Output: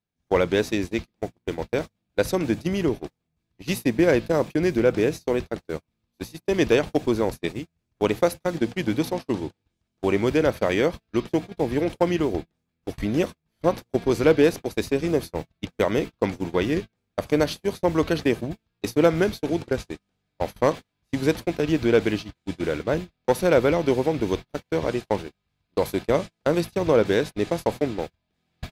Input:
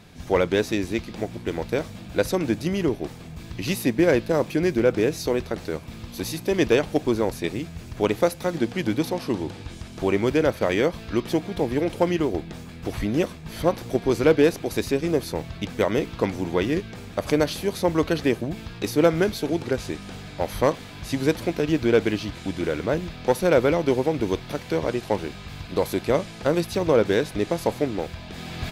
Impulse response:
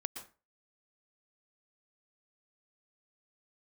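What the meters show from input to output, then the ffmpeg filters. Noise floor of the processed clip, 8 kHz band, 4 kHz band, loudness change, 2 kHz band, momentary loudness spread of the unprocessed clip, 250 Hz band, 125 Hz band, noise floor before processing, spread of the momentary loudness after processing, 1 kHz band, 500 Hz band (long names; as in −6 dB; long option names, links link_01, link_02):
−79 dBFS, −2.5 dB, −1.5 dB, 0.0 dB, −0.5 dB, 12 LU, −0.5 dB, −1.0 dB, −40 dBFS, 13 LU, 0.0 dB, 0.0 dB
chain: -af "agate=range=-39dB:threshold=-27dB:ratio=16:detection=peak"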